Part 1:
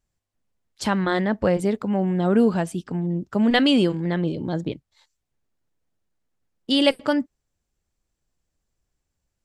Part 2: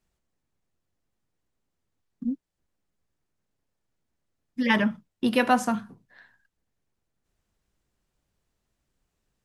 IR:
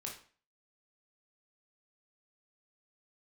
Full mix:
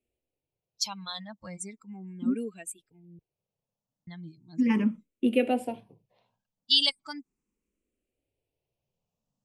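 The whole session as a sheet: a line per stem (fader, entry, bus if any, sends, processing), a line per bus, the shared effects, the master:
−5.5 dB, 0.00 s, muted 0:03.19–0:04.07, no send, spectral dynamics exaggerated over time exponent 2; tilt shelving filter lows −9 dB, about 1,400 Hz
−10.5 dB, 0.00 s, no send, graphic EQ with 10 bands 125 Hz +6 dB, 250 Hz +10 dB, 500 Hz +9 dB, 1,000 Hz +5 dB, 2,000 Hz −3 dB, 4,000 Hz −10 dB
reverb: not used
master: low-pass filter 9,700 Hz 12 dB per octave; high shelf with overshoot 2,000 Hz +7 dB, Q 3; frequency shifter mixed with the dry sound +0.37 Hz

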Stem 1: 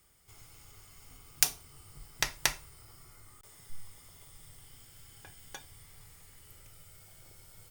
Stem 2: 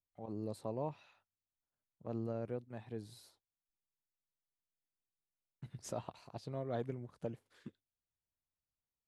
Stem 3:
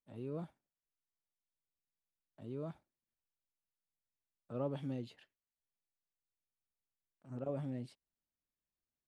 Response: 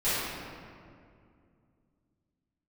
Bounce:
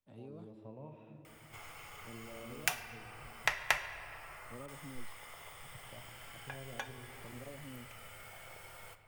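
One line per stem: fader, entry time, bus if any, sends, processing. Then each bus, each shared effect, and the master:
−5.0 dB, 1.25 s, no bus, send −21.5 dB, flat-topped bell 1,200 Hz +13.5 dB 3 octaves
−7.5 dB, 0.00 s, bus A, send −19 dB, harmonic and percussive parts rebalanced percussive −11 dB; Savitzky-Golay smoothing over 25 samples
−1.0 dB, 0.00 s, bus A, no send, expander for the loud parts 1.5 to 1, over −49 dBFS
bus A: 0.0 dB, high-shelf EQ 3,500 Hz −7 dB; downward compressor, threshold −47 dBFS, peak gain reduction 12.5 dB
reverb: on, RT60 2.3 s, pre-delay 4 ms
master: multiband upward and downward compressor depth 40%

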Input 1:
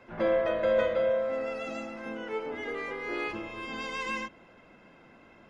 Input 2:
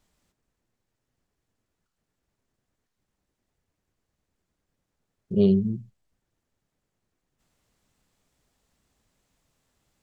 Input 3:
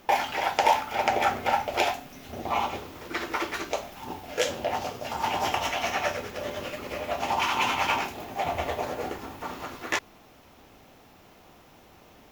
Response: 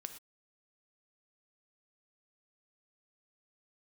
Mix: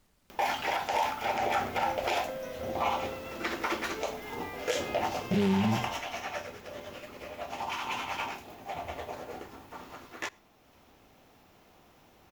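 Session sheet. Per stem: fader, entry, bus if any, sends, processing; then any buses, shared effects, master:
−6.5 dB, 1.65 s, no send, downward compressor, threshold −30 dBFS, peak gain reduction 9 dB
+2.0 dB, 0.00 s, send −9 dB, brickwall limiter −17 dBFS, peak gain reduction 7 dB; short delay modulated by noise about 2,300 Hz, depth 0.087 ms
0:05.58 −3 dB → 0:06.10 −10.5 dB, 0.30 s, send −11.5 dB, upward compression, threshold −44 dBFS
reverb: on, pre-delay 3 ms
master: brickwall limiter −19 dBFS, peak gain reduction 10.5 dB

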